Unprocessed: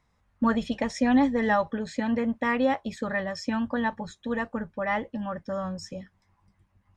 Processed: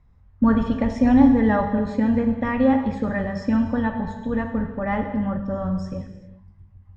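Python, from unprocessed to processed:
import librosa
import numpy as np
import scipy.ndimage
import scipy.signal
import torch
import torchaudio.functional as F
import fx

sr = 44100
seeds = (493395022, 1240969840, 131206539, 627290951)

y = fx.riaa(x, sr, side='playback')
y = fx.rev_gated(y, sr, seeds[0], gate_ms=430, shape='falling', drr_db=4.0)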